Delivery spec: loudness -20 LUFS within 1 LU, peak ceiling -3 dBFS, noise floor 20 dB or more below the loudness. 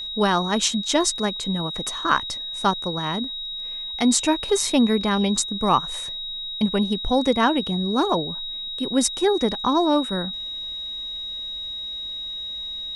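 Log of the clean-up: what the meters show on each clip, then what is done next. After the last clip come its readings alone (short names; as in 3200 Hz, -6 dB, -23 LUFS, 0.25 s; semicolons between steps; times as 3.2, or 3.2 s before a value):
steady tone 3800 Hz; tone level -29 dBFS; loudness -23.0 LUFS; peak -4.5 dBFS; loudness target -20.0 LUFS
-> notch 3800 Hz, Q 30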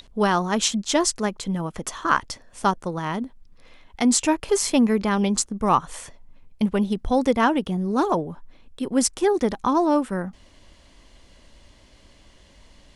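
steady tone none; loudness -22.5 LUFS; peak -4.5 dBFS; loudness target -20.0 LUFS
-> gain +2.5 dB; limiter -3 dBFS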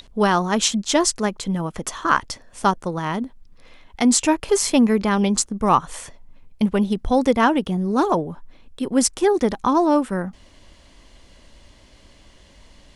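loudness -20.0 LUFS; peak -3.0 dBFS; noise floor -51 dBFS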